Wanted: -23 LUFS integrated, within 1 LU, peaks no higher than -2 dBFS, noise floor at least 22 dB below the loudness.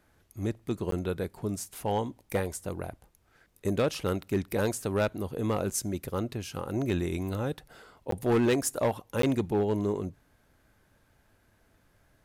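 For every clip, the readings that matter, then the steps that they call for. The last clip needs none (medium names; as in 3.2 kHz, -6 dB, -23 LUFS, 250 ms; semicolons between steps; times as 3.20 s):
clipped samples 0.8%; clipping level -20.0 dBFS; dropouts 3; longest dropout 13 ms; loudness -31.0 LUFS; peak level -20.0 dBFS; loudness target -23.0 LUFS
-> clip repair -20 dBFS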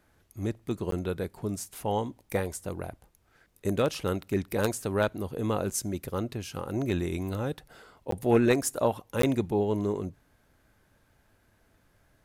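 clipped samples 0.0%; dropouts 3; longest dropout 13 ms
-> interpolate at 0.91/8.11/9.22 s, 13 ms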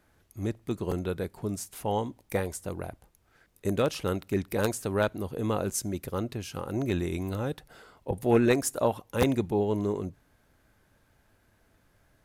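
dropouts 0; loudness -30.0 LUFS; peak level -11.0 dBFS; loudness target -23.0 LUFS
-> trim +7 dB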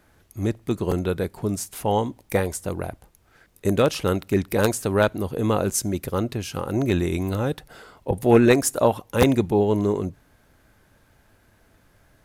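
loudness -23.0 LUFS; peak level -4.0 dBFS; noise floor -60 dBFS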